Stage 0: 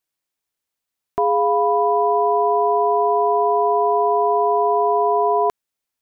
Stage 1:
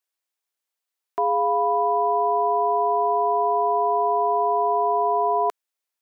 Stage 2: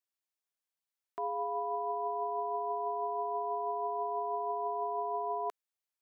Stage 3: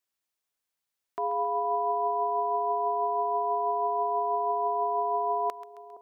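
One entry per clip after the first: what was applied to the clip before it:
high-pass filter 440 Hz; level −2.5 dB
brickwall limiter −19.5 dBFS, peak gain reduction 6.5 dB; level −8.5 dB
echo with a time of its own for lows and highs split 860 Hz, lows 466 ms, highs 134 ms, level −12 dB; level +5.5 dB

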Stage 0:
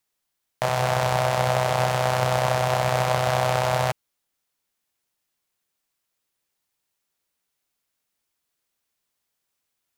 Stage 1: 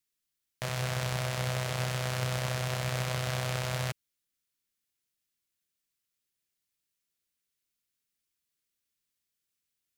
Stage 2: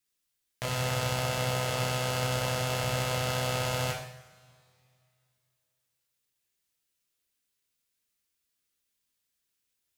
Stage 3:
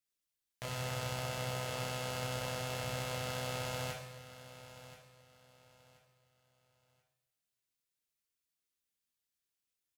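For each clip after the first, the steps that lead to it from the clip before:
parametric band 790 Hz −13.5 dB 1.3 octaves; level −5 dB
coupled-rooms reverb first 0.65 s, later 2.6 s, from −21 dB, DRR −1.5 dB
repeating echo 1,030 ms, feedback 28%, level −14.5 dB; level −8.5 dB

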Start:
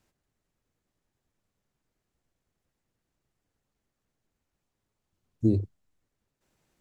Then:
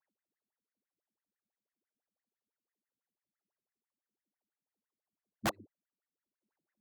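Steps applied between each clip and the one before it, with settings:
LFO wah 6 Hz 200–2,000 Hz, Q 13
wrap-around overflow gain 26.5 dB
level +1 dB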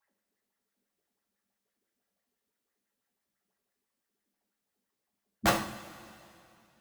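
coupled-rooms reverb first 0.48 s, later 2.7 s, from −17 dB, DRR −1.5 dB
level +5.5 dB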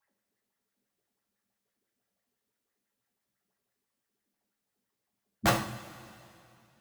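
parametric band 120 Hz +10.5 dB 0.34 octaves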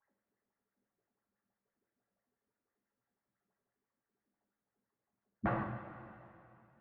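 low-pass filter 1,800 Hz 24 dB per octave
brickwall limiter −24.5 dBFS, peak gain reduction 10.5 dB
level −1 dB

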